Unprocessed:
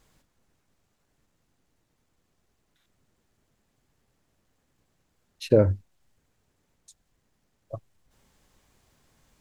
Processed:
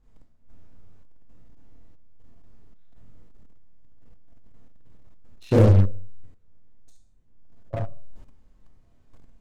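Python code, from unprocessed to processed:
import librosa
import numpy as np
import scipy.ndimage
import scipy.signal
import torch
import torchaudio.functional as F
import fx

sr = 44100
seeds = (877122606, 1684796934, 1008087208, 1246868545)

p1 = fx.tilt_eq(x, sr, slope=-3.5)
p2 = fx.rev_schroeder(p1, sr, rt60_s=0.48, comb_ms=25, drr_db=-7.0)
p3 = fx.dynamic_eq(p2, sr, hz=1000.0, q=0.74, threshold_db=-24.0, ratio=4.0, max_db=-5)
p4 = fx.comb_fb(p3, sr, f0_hz=98.0, decay_s=0.53, harmonics='all', damping=0.0, mix_pct=70)
p5 = fx.fuzz(p4, sr, gain_db=27.0, gate_db=-36.0)
p6 = p4 + (p5 * 10.0 ** (-5.5 / 20.0))
y = p6 * 10.0 ** (-4.0 / 20.0)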